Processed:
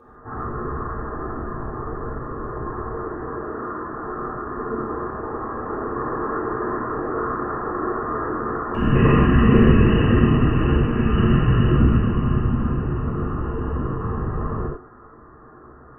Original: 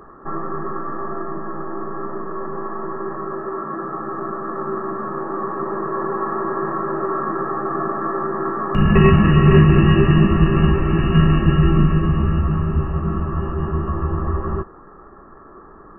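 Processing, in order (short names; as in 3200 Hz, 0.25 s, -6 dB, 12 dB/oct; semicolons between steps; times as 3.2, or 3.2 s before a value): whisperiser; non-linear reverb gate 0.17 s flat, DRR -7 dB; gain -11 dB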